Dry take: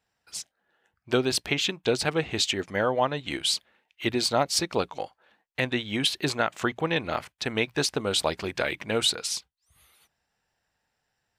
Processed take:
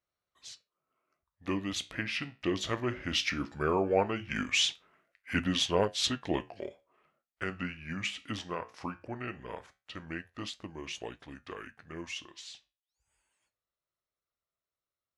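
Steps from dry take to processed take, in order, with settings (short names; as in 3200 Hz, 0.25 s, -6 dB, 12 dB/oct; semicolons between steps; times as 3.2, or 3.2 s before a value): Doppler pass-by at 3.49, 6 m/s, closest 6.1 m; varispeed -25%; flange 0.18 Hz, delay 9.2 ms, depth 8.9 ms, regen -71%; gain +2.5 dB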